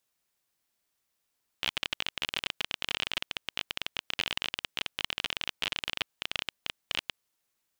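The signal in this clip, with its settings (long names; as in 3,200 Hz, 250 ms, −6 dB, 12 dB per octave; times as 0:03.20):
Geiger counter clicks 26 per second −12.5 dBFS 5.52 s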